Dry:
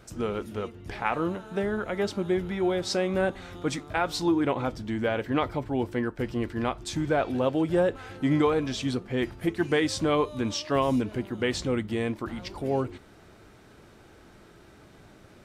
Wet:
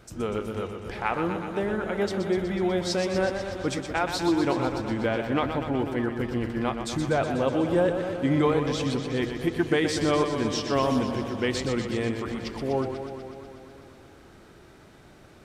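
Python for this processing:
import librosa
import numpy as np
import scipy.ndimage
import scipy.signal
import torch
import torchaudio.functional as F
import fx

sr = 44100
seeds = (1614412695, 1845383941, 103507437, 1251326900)

y = fx.echo_warbled(x, sr, ms=123, feedback_pct=75, rate_hz=2.8, cents=68, wet_db=-8)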